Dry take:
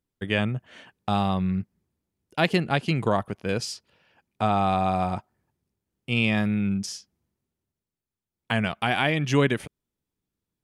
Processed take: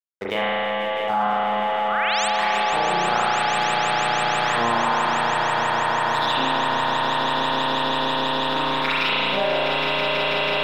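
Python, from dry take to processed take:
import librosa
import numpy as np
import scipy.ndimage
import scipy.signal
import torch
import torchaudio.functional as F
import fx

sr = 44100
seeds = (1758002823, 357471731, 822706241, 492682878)

p1 = fx.pitch_glide(x, sr, semitones=6.5, runs='starting unshifted')
p2 = fx.level_steps(p1, sr, step_db=12)
p3 = fx.formant_shift(p2, sr, semitones=3)
p4 = fx.filter_lfo_bandpass(p3, sr, shape='saw_up', hz=1.1, low_hz=530.0, high_hz=3200.0, q=1.6)
p5 = np.sign(p4) * np.maximum(np.abs(p4) - 10.0 ** (-51.5 / 20.0), 0.0)
p6 = fx.spec_paint(p5, sr, seeds[0], shape='rise', start_s=1.88, length_s=0.4, low_hz=1100.0, high_hz=9000.0, level_db=-34.0)
p7 = p6 + fx.echo_swell(p6, sr, ms=163, loudest=8, wet_db=-7.5, dry=0)
p8 = fx.rev_spring(p7, sr, rt60_s=2.0, pass_ms=(34,), chirp_ms=35, drr_db=-9.0)
y = fx.env_flatten(p8, sr, amount_pct=70)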